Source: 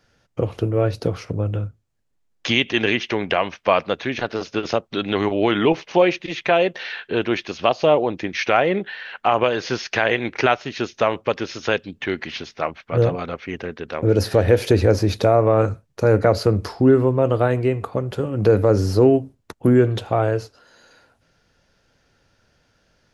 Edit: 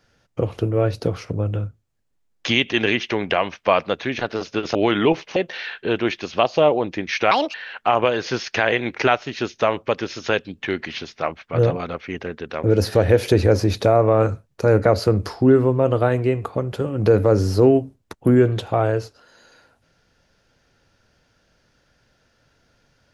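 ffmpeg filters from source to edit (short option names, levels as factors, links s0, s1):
-filter_complex "[0:a]asplit=5[s0][s1][s2][s3][s4];[s0]atrim=end=4.752[s5];[s1]atrim=start=5.348:end=5.962[s6];[s2]atrim=start=6.618:end=8.574[s7];[s3]atrim=start=8.57:end=8.93,asetpts=PTS-STARTPTS,asetrate=68796,aresample=44100[s8];[s4]atrim=start=8.926[s9];[s5][s6]acrossfade=d=0.004:c1=hsin:c2=hsin[s10];[s10][s7]acrossfade=d=0.004:c1=hsin:c2=hsin[s11];[s11][s8]acrossfade=d=0.004:c1=hsin:c2=hsin[s12];[s12][s9]acrossfade=d=0.004:c1=hsin:c2=hsin"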